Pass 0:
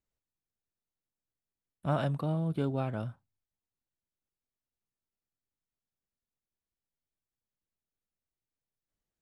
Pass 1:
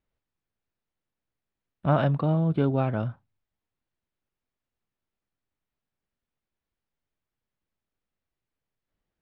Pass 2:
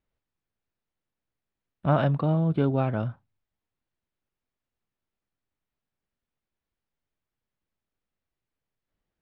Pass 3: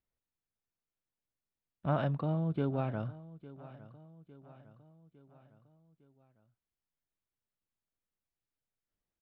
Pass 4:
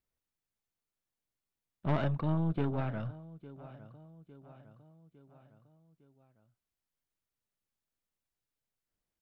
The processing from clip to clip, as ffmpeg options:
-af "lowpass=3000,volume=2.37"
-af anull
-af "aecho=1:1:856|1712|2568|3424:0.126|0.0667|0.0354|0.0187,volume=0.376"
-af "aeval=exprs='(tanh(22.4*val(0)+0.8)-tanh(0.8))/22.4':c=same,volume=2"

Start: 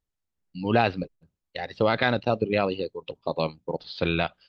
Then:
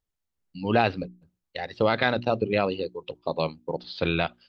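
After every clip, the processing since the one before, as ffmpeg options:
-af "bandreject=f=60:t=h:w=6,bandreject=f=120:t=h:w=6,bandreject=f=180:t=h:w=6,bandreject=f=240:t=h:w=6,bandreject=f=300:t=h:w=6,bandreject=f=360:t=h:w=6"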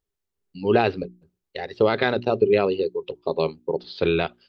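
-af "equalizer=f=400:w=4.4:g=13.5"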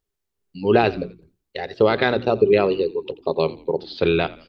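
-filter_complex "[0:a]asplit=4[s0][s1][s2][s3];[s1]adelay=86,afreqshift=-56,volume=0.112[s4];[s2]adelay=172,afreqshift=-112,volume=0.0437[s5];[s3]adelay=258,afreqshift=-168,volume=0.017[s6];[s0][s4][s5][s6]amix=inputs=4:normalize=0,volume=1.33"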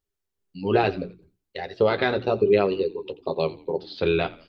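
-af "flanger=delay=9.9:depth=1:regen=-35:speed=0.75:shape=sinusoidal"

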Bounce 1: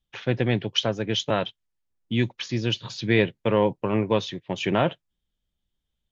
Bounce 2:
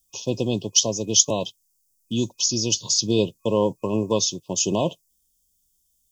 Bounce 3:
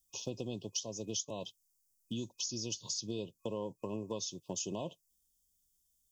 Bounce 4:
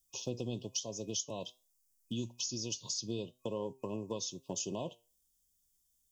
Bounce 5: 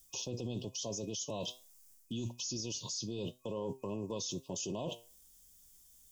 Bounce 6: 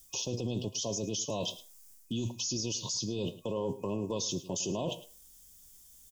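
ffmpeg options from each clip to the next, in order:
-af "equalizer=f=125:t=o:w=0.33:g=-6,equalizer=f=800:t=o:w=0.33:g=-7,equalizer=f=4000:t=o:w=0.33:g=-12,aexciter=amount=13.1:drive=5.7:freq=4300,afftfilt=real='re*(1-between(b*sr/4096,1100,2500))':imag='im*(1-between(b*sr/4096,1100,2500))':win_size=4096:overlap=0.75,volume=1.12"
-af "acompressor=threshold=0.0398:ratio=5,volume=0.398"
-af "flanger=delay=7.1:depth=1.5:regen=85:speed=1.1:shape=triangular,volume=1.78"
-af "areverse,acompressor=threshold=0.00631:ratio=6,areverse,alimiter=level_in=10.6:limit=0.0631:level=0:latency=1:release=13,volume=0.0944,volume=5.01"
-af "aecho=1:1:107:0.15,volume=1.78"

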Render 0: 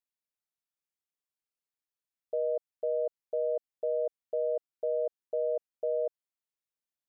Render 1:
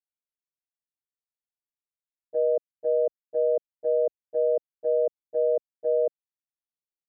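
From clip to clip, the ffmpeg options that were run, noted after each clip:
-af "agate=range=0.1:threshold=0.0316:ratio=16:detection=peak,tiltshelf=f=700:g=9,volume=1.88"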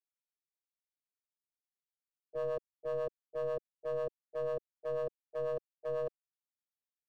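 -filter_complex "[0:a]acrossover=split=330|380[s0][s1][s2];[s2]aeval=exprs='clip(val(0),-1,0.0335)':c=same[s3];[s0][s1][s3]amix=inputs=3:normalize=0,acrossover=split=520[s4][s5];[s4]aeval=exprs='val(0)*(1-0.7/2+0.7/2*cos(2*PI*8.1*n/s))':c=same[s6];[s5]aeval=exprs='val(0)*(1-0.7/2-0.7/2*cos(2*PI*8.1*n/s))':c=same[s7];[s6][s7]amix=inputs=2:normalize=0,volume=0.447"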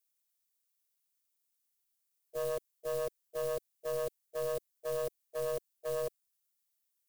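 -filter_complex "[0:a]acrossover=split=450|1800[s0][s1][s2];[s0]acrusher=bits=4:mode=log:mix=0:aa=0.000001[s3];[s3][s1][s2]amix=inputs=3:normalize=0,crystalizer=i=3.5:c=0"

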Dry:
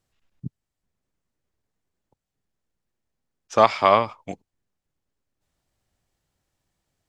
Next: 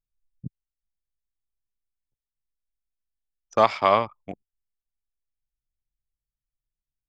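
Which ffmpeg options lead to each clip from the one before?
-af "anlmdn=10,volume=0.75"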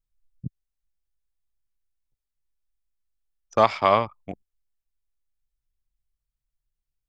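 -af "lowshelf=f=100:g=8"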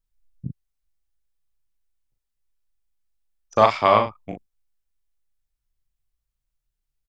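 -filter_complex "[0:a]asplit=2[s0][s1];[s1]adelay=38,volume=0.531[s2];[s0][s2]amix=inputs=2:normalize=0,volume=1.19"

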